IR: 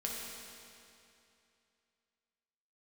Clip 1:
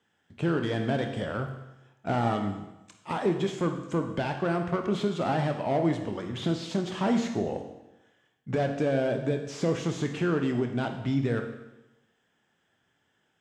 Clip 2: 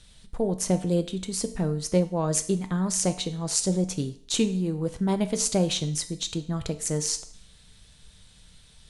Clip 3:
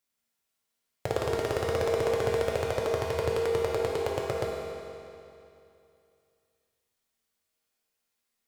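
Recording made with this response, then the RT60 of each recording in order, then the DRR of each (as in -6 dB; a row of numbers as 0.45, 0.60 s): 3; 0.95, 0.55, 2.7 s; 4.5, 9.0, -3.5 dB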